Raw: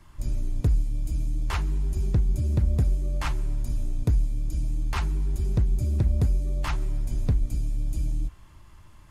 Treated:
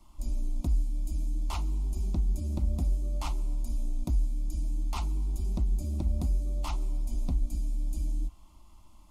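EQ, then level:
phaser with its sweep stopped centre 450 Hz, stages 6
−2.0 dB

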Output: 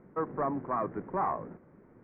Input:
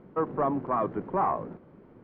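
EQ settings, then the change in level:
low-pass with resonance 2,000 Hz, resonance Q 2.4
high-frequency loss of the air 470 metres
−4.0 dB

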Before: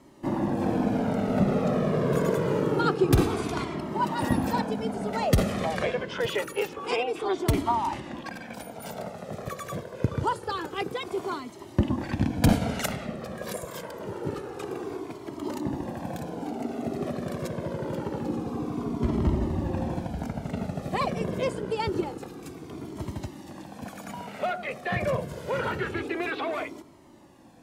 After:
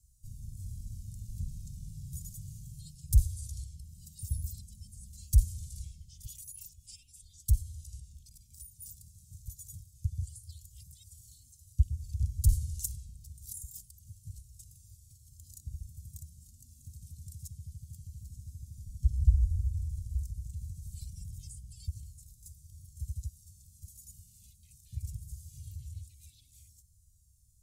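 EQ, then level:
inverse Chebyshev band-stop filter 360–1,600 Hz, stop band 80 dB
high-shelf EQ 4,100 Hz −6 dB
+6.0 dB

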